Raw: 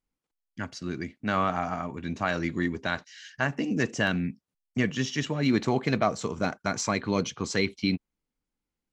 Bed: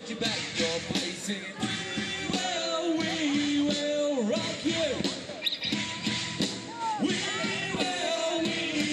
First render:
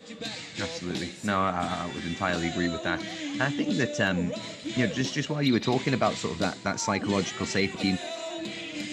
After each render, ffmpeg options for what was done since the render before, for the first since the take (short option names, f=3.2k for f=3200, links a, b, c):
-filter_complex "[1:a]volume=-6.5dB[a];[0:a][a]amix=inputs=2:normalize=0"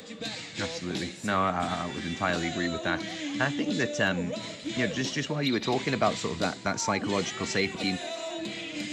-filter_complex "[0:a]acrossover=split=330|850|2800[a][b][c][d];[a]alimiter=level_in=3dB:limit=-24dB:level=0:latency=1,volume=-3dB[e];[e][b][c][d]amix=inputs=4:normalize=0,acompressor=mode=upward:threshold=-43dB:ratio=2.5"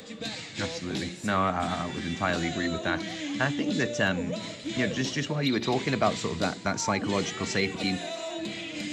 -af "lowshelf=f=230:g=3.5,bandreject=f=58.79:t=h:w=4,bandreject=f=117.58:t=h:w=4,bandreject=f=176.37:t=h:w=4,bandreject=f=235.16:t=h:w=4,bandreject=f=293.95:t=h:w=4,bandreject=f=352.74:t=h:w=4,bandreject=f=411.53:t=h:w=4,bandreject=f=470.32:t=h:w=4"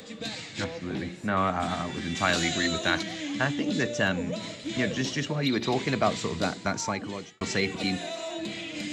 -filter_complex "[0:a]asettb=1/sr,asplit=3[a][b][c];[a]atrim=end=0.644[d];[b]atrim=start=0.64:end=1.37,asetpts=PTS-STARTPTS,afade=t=in:d=0.004:c=qsin,afade=t=out:st=0.726:d=0.004:c=qsin,acrossover=split=2700[e][f];[f]acompressor=threshold=-53dB:ratio=4:attack=1:release=60[g];[e][g]amix=inputs=2:normalize=0[h];[c]atrim=start=1.366[i];[d][h]acrossfade=d=0.004:c1=hsin:c2=qsin[j];[j][i]acrossfade=d=0.004:c1=qsin:c2=hsin,asettb=1/sr,asplit=3[k][l][m];[k]atrim=end=2.154[n];[l]atrim=start=2.15:end=3.03,asetpts=PTS-STARTPTS,afade=t=in:d=0.004:c=qsin,afade=t=out:st=0.876:d=0.004:c=qsin,highshelf=f=2.2k:g=10.5[o];[m]atrim=start=3.026[p];[n][o]acrossfade=d=0.004:c1=hsin:c2=qsin[q];[q][p]acrossfade=d=0.004:c1=qsin:c2=hsin,asplit=2[r][s];[r]atrim=end=7.41,asetpts=PTS-STARTPTS,afade=t=out:st=6.69:d=0.72[t];[s]atrim=start=7.41,asetpts=PTS-STARTPTS,afade=t=in:d=0.004:c=hsin[u];[t][u]concat=n=2:v=0:a=1"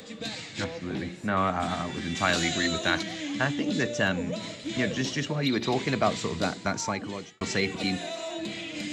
-af anull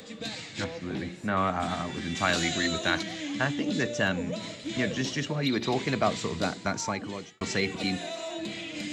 -af "volume=-1dB"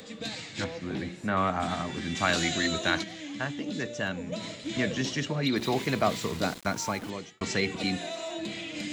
-filter_complex "[0:a]asettb=1/sr,asplit=3[a][b][c];[a]atrim=end=5.564[d];[b]atrim=start=5.56:end=7.1,asetpts=PTS-STARTPTS,afade=t=in:d=0.004:c=qsin,afade=t=out:st=1.536:d=0.004:c=qsin,aeval=exprs='val(0)*gte(abs(val(0)),0.0112)':c=same[e];[c]atrim=start=7.096[f];[d][e]acrossfade=d=0.004:c1=hsin:c2=qsin[g];[g][f]acrossfade=d=0.004:c1=qsin:c2=hsin,asplit=3[h][i][j];[h]atrim=end=3.042[k];[i]atrim=start=3.038:end=4.322,asetpts=PTS-STARTPTS,volume=-5dB[l];[j]atrim=start=4.318[m];[k][l]acrossfade=d=0.004:c1=hsin:c2=hsin[n];[n][m]acrossfade=d=0.004:c1=hsin:c2=hsin"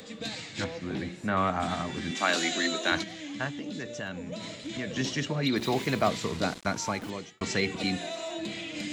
-filter_complex "[0:a]asettb=1/sr,asplit=3[a][b][c];[a]atrim=end=2.114[d];[b]atrim=start=2.11:end=2.92,asetpts=PTS-STARTPTS,afade=t=in:d=0.004:c=qsin,afade=t=out:st=0.806:d=0.004:c=qsin,highpass=f=230:w=0.5412,highpass=f=230:w=1.3066[e];[c]atrim=start=2.916[f];[d][e]acrossfade=d=0.004:c1=hsin:c2=qsin[g];[g][f]acrossfade=d=0.004:c1=qsin:c2=hsin,asettb=1/sr,asplit=3[h][i][j];[h]atrim=end=3.494[k];[i]atrim=start=3.49:end=4.96,asetpts=PTS-STARTPTS,afade=t=in:d=0.004:c=qsin,afade=t=out:st=1.466:d=0.004:c=qsin,acompressor=threshold=-35dB:ratio=2:attack=3.2:release=140:knee=1:detection=peak[l];[j]atrim=start=4.956[m];[k][l]acrossfade=d=0.004:c1=hsin:c2=qsin[n];[n][m]acrossfade=d=0.004:c1=qsin:c2=hsin,asettb=1/sr,asplit=3[o][p][q];[o]atrim=end=6.094[r];[p]atrim=start=6.09:end=7.02,asetpts=PTS-STARTPTS,afade=t=in:d=0.004:c=qsin,afade=t=out:st=0.926:d=0.004:c=qsin,lowpass=9k[s];[q]atrim=start=7.016[t];[r][s]acrossfade=d=0.004:c1=hsin:c2=qsin[u];[u][t]acrossfade=d=0.004:c1=qsin:c2=hsin"